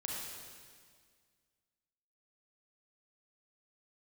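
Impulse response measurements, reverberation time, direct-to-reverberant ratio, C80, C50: 1.9 s, -3.0 dB, 0.5 dB, -1.5 dB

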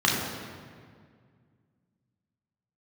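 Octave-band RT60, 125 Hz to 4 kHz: 2.9 s, 2.6 s, 2.1 s, 1.8 s, 1.7 s, 1.3 s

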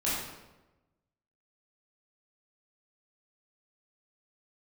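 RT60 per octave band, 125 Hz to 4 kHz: 1.3 s, 1.2 s, 1.1 s, 1.0 s, 0.85 s, 0.75 s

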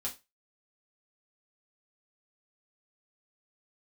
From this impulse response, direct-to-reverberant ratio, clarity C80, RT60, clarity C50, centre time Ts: -4.0 dB, 21.5 dB, 0.25 s, 14.5 dB, 15 ms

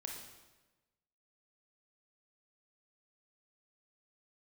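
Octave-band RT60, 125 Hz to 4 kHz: 1.3 s, 1.2 s, 1.2 s, 1.1 s, 1.1 s, 1.0 s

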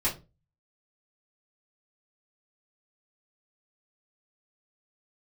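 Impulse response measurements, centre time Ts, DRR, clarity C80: 21 ms, -8.0 dB, 19.5 dB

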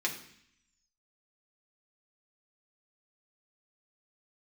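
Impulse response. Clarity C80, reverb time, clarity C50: 12.5 dB, 0.65 s, 9.5 dB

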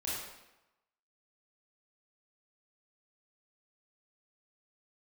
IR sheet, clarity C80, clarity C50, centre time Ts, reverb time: 2.0 dB, -1.5 dB, 79 ms, 0.95 s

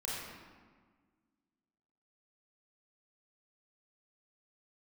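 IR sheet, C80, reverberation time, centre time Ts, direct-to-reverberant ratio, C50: 0.0 dB, 1.5 s, 108 ms, -7.0 dB, -3.0 dB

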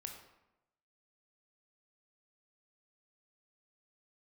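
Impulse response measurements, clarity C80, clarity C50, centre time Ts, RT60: 8.0 dB, 5.5 dB, 29 ms, 0.95 s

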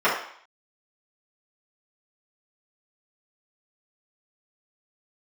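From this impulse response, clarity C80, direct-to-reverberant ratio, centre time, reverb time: 8.0 dB, -10.5 dB, 40 ms, 0.60 s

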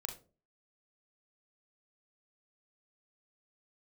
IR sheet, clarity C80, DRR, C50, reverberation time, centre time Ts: 16.5 dB, 3.5 dB, 9.5 dB, 0.35 s, 16 ms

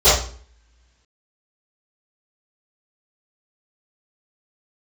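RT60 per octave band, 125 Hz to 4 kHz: 0.55 s, 0.60 s, 0.45 s, 0.45 s, 0.45 s, 0.40 s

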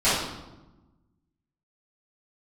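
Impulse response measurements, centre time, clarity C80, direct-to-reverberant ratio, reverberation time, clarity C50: 68 ms, 4.0 dB, -14.5 dB, 1.1 s, -0.5 dB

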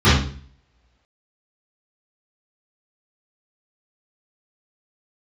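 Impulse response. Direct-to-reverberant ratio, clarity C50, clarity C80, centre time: -14.5 dB, 2.0 dB, 7.5 dB, 48 ms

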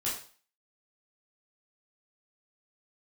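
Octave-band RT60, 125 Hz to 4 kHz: 0.45 s, 0.40 s, 0.40 s, 0.45 s, 0.40 s, 0.40 s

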